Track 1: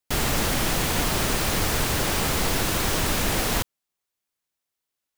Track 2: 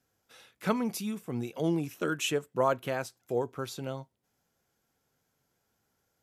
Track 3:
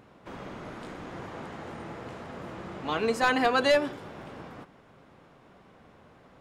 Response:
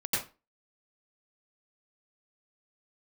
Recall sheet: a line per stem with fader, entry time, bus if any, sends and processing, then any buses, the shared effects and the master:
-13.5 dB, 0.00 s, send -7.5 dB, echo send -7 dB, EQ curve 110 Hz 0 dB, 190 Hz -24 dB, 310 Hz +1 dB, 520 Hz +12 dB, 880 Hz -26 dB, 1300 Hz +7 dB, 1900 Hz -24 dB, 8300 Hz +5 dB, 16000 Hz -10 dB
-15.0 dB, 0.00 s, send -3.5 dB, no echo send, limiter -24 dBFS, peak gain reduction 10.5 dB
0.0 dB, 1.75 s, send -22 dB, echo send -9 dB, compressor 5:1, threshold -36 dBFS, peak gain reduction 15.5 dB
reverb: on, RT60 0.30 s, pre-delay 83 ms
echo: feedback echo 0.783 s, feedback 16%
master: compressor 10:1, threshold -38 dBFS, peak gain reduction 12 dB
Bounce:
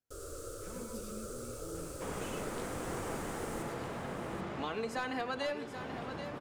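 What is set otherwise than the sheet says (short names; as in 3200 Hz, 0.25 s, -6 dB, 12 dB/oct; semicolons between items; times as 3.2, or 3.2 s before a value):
stem 1 -13.5 dB -> -25.0 dB; stem 2 -15.0 dB -> -22.0 dB; master: missing compressor 10:1, threshold -38 dBFS, peak gain reduction 12 dB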